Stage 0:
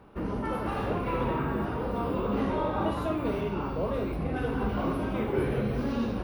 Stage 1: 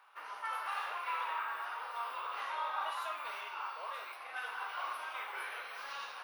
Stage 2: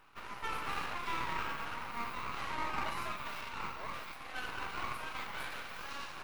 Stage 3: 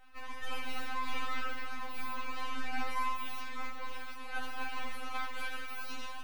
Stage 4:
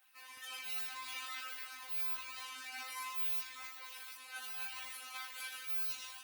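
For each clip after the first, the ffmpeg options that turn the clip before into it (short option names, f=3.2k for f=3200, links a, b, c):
-af "highpass=f=1k:w=0.5412,highpass=f=1k:w=1.3066"
-af "bandreject=f=3.5k:w=5.8,aeval=exprs='max(val(0),0)':c=same,volume=4.5dB"
-af "afftfilt=real='re*3.46*eq(mod(b,12),0)':imag='im*3.46*eq(mod(b,12),0)':win_size=2048:overlap=0.75,volume=2.5dB"
-af "aderivative,volume=6dB" -ar 48000 -c:a libopus -b:a 20k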